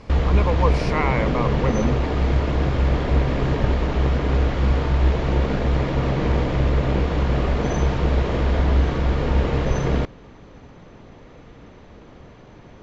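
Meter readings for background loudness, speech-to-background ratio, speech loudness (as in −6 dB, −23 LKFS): −21.5 LKFS, −4.5 dB, −26.0 LKFS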